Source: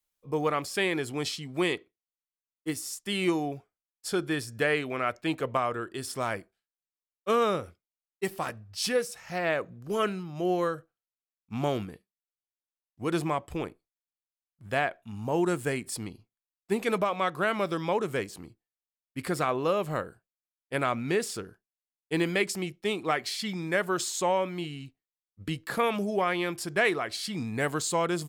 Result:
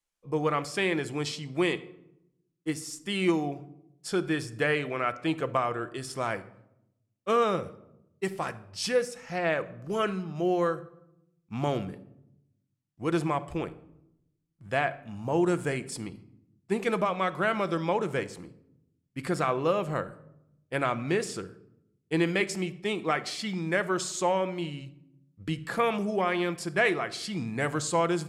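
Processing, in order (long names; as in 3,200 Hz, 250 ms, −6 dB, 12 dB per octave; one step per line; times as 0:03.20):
low-pass filter 8,600 Hz 12 dB per octave
parametric band 4,000 Hz −3 dB 0.61 octaves
rectangular room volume 2,400 cubic metres, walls furnished, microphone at 0.75 metres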